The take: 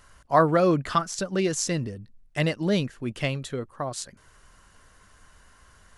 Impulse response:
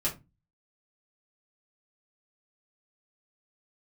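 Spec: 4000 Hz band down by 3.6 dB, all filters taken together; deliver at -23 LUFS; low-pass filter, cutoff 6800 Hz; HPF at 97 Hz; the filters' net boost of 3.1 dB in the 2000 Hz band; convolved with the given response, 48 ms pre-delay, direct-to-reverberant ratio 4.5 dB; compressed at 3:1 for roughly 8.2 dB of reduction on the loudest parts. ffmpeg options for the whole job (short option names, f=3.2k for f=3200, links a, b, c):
-filter_complex "[0:a]highpass=97,lowpass=6.8k,equalizer=f=2k:t=o:g=5.5,equalizer=f=4k:t=o:g=-7,acompressor=threshold=-24dB:ratio=3,asplit=2[a][b];[1:a]atrim=start_sample=2205,adelay=48[c];[b][c]afir=irnorm=-1:irlink=0,volume=-11dB[d];[a][d]amix=inputs=2:normalize=0,volume=5dB"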